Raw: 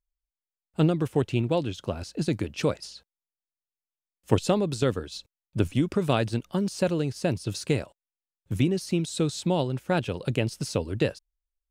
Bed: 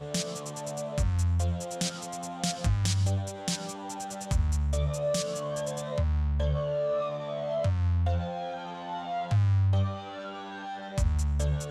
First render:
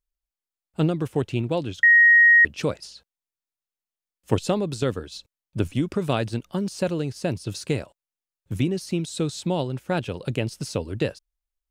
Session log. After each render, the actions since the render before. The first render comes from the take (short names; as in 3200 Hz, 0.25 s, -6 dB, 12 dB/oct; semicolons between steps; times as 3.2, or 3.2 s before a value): 1.83–2.45 bleep 1880 Hz -10.5 dBFS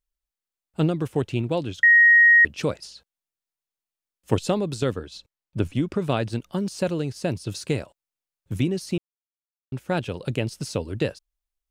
4.93–6.3 high shelf 5600 Hz -7 dB; 8.98–9.72 mute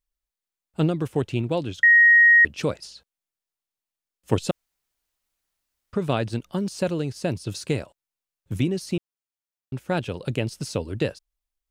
4.51–5.93 room tone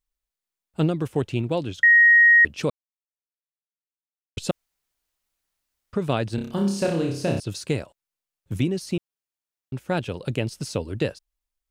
2.7–4.37 mute; 6.35–7.4 flutter echo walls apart 5.2 m, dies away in 0.55 s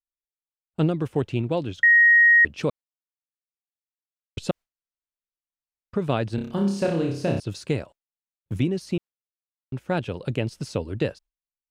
gate with hold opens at -41 dBFS; high shelf 5400 Hz -9.5 dB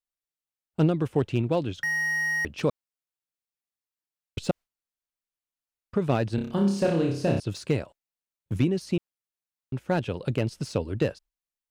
slew limiter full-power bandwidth 97 Hz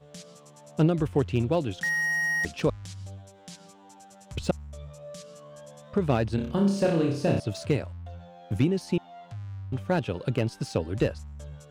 add bed -14 dB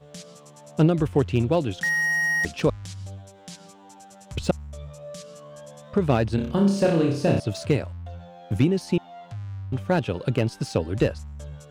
gain +3.5 dB